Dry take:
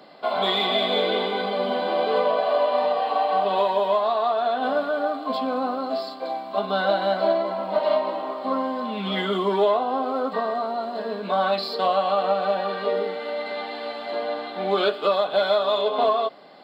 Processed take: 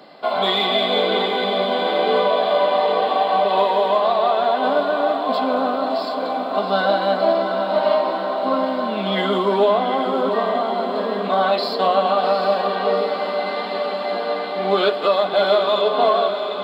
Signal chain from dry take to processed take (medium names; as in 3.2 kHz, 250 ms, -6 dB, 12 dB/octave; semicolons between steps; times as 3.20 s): echo that smears into a reverb 765 ms, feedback 68%, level -7.5 dB; trim +3.5 dB